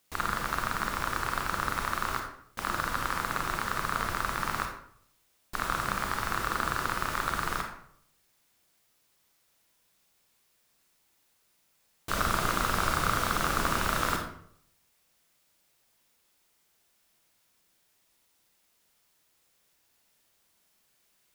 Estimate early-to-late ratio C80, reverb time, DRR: 8.5 dB, 0.65 s, 2.0 dB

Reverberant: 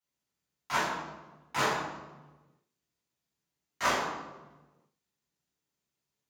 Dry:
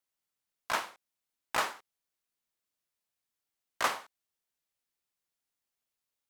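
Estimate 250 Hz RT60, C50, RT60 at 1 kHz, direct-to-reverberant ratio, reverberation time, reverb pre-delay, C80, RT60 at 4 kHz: 1.5 s, 0.0 dB, 1.1 s, −11.5 dB, 1.2 s, 3 ms, 3.5 dB, 0.80 s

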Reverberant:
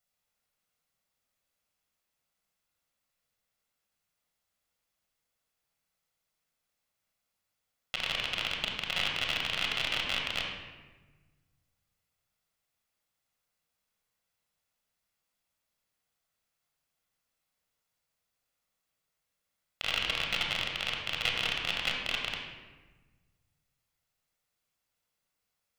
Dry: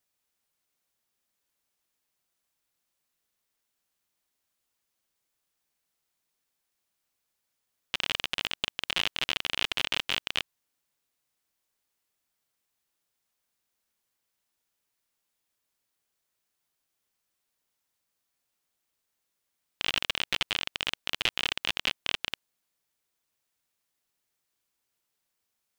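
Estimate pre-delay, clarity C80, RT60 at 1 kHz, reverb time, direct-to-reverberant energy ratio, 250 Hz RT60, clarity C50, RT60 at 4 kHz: 25 ms, 4.5 dB, 1.2 s, 1.3 s, −0.5 dB, 1.8 s, 2.0 dB, 0.85 s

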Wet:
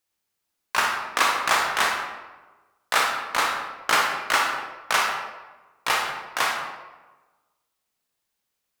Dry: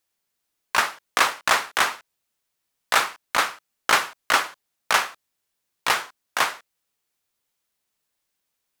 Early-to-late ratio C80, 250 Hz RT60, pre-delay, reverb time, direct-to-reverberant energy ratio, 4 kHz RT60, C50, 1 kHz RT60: 5.5 dB, 1.2 s, 26 ms, 1.2 s, 0.0 dB, 0.75 s, 3.0 dB, 1.2 s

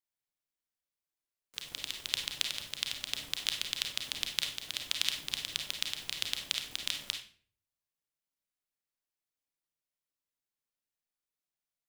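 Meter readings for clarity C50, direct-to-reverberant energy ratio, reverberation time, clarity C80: 5.5 dB, 2.5 dB, 0.50 s, 11.0 dB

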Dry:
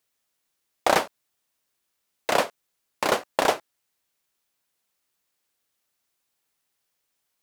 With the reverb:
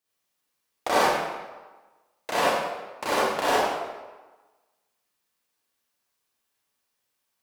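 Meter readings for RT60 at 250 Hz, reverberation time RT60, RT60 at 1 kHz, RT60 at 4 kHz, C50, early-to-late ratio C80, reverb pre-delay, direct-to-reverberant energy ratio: 1.1 s, 1.3 s, 1.3 s, 0.90 s, −6.0 dB, −1.0 dB, 37 ms, −9.5 dB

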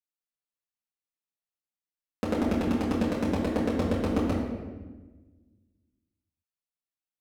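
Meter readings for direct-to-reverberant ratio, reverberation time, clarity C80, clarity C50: −8.5 dB, 1.3 s, 4.0 dB, 2.0 dB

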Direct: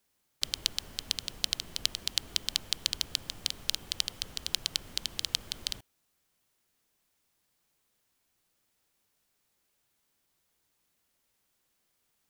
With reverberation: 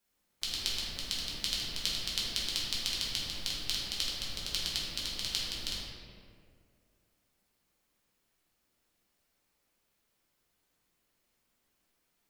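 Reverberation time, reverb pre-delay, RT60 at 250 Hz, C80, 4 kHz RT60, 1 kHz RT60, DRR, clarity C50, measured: 2.2 s, 4 ms, 2.5 s, 0.5 dB, 1.2 s, 1.9 s, −7.0 dB, −1.5 dB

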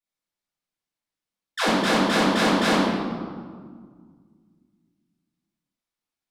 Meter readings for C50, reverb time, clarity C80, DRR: −2.5 dB, 1.9 s, 0.0 dB, −14.5 dB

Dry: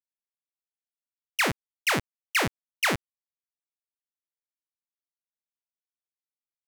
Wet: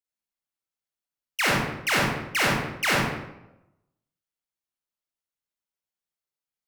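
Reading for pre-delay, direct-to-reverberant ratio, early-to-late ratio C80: 37 ms, −4.5 dB, 2.5 dB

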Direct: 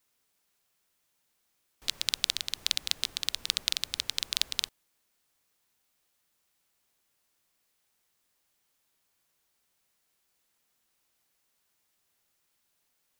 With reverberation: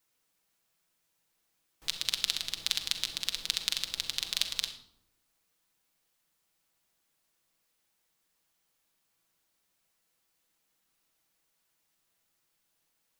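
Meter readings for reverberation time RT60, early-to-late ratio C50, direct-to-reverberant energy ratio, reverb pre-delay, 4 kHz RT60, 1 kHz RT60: 0.80 s, 9.5 dB, 4.0 dB, 6 ms, 0.45 s, 0.70 s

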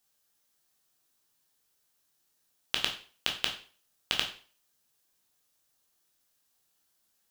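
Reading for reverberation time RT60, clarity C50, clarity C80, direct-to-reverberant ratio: 0.40 s, 8.5 dB, 13.0 dB, 1.0 dB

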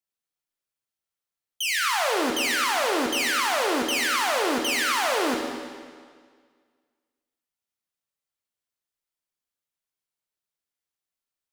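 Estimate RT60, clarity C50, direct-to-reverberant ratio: 1.8 s, 3.0 dB, 1.0 dB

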